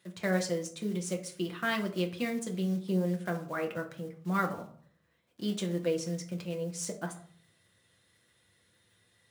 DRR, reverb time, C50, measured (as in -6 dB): 1.5 dB, 0.50 s, 12.0 dB